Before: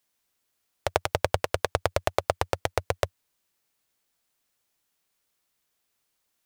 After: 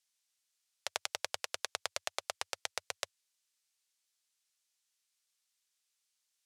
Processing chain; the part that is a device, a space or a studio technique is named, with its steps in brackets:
piezo pickup straight into a mixer (low-pass filter 6,600 Hz 12 dB per octave; first difference)
level +3 dB

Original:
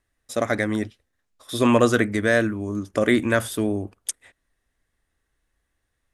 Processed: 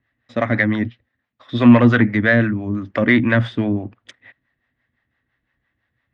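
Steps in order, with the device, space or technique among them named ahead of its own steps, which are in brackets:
guitar amplifier with harmonic tremolo (two-band tremolo in antiphase 5.9 Hz, depth 70%, crossover 450 Hz; soft clipping −14.5 dBFS, distortion −17 dB; loudspeaker in its box 83–3,600 Hz, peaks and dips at 120 Hz +10 dB, 240 Hz +7 dB, 420 Hz −6 dB, 1,900 Hz +7 dB)
level +7 dB

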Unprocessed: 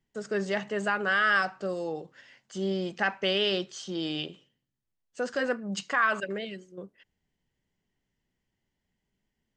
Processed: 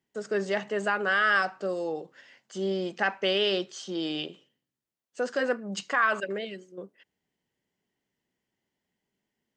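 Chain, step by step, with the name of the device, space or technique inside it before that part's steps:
filter by subtraction (in parallel: low-pass filter 370 Hz 12 dB per octave + polarity inversion)

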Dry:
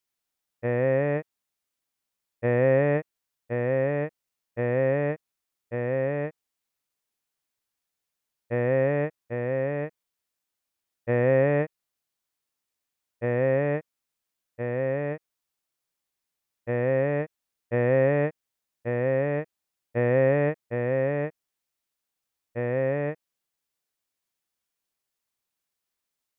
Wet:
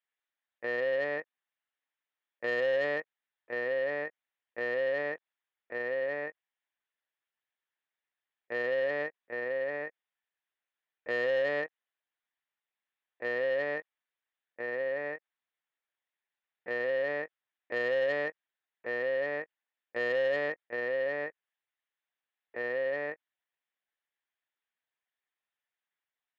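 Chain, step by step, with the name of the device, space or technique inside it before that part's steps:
talking toy (linear-prediction vocoder at 8 kHz pitch kept; high-pass filter 420 Hz 12 dB per octave; parametric band 1,800 Hz +8.5 dB 0.38 octaves; soft clipping −19.5 dBFS, distortion −16 dB)
level −3.5 dB

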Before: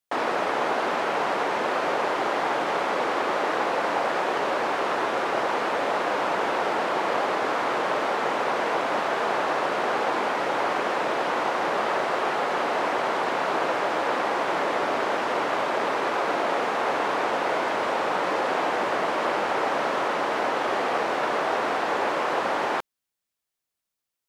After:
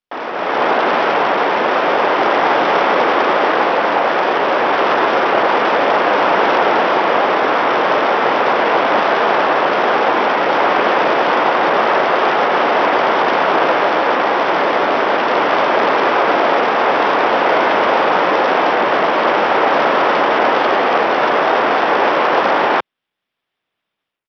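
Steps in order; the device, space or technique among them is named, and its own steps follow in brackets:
Bluetooth headset (high-pass filter 130 Hz; automatic gain control gain up to 15 dB; downsampling to 8,000 Hz; SBC 64 kbit/s 44,100 Hz)

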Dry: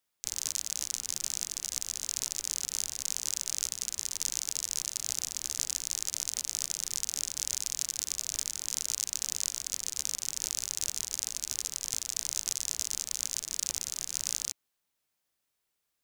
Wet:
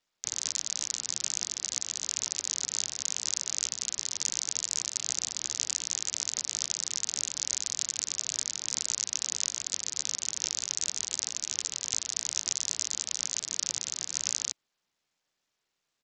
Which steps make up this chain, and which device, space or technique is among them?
Bluetooth headset (high-pass filter 100 Hz 12 dB per octave; downsampling to 16,000 Hz; level +3 dB; SBC 64 kbit/s 44,100 Hz)

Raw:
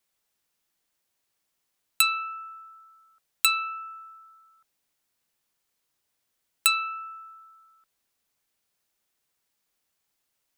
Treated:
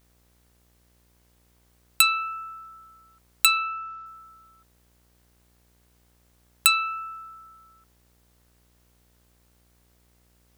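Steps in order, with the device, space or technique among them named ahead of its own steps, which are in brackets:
video cassette with head-switching buzz (hum with harmonics 60 Hz, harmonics 37, −67 dBFS −6 dB per octave; white noise bed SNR 37 dB)
0:03.57–0:04.06: low-pass filter 6,000 Hz 24 dB per octave
level +3 dB

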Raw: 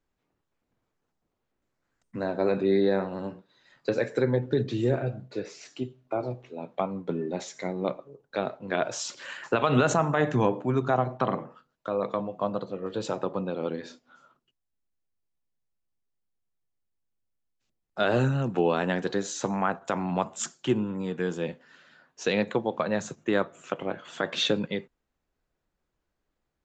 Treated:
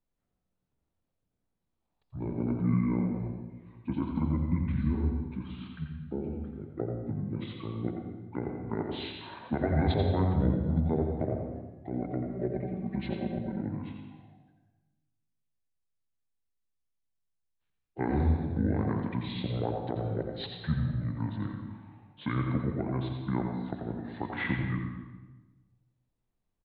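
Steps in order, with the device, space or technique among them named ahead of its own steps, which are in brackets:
monster voice (pitch shifter −8.5 semitones; formants moved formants −2 semitones; low-shelf EQ 170 Hz +4.5 dB; single-tap delay 86 ms −8 dB; convolution reverb RT60 1.2 s, pre-delay 83 ms, DRR 4 dB)
0:12.32–0:13.62: comb filter 5.2 ms, depth 79%
level −7 dB

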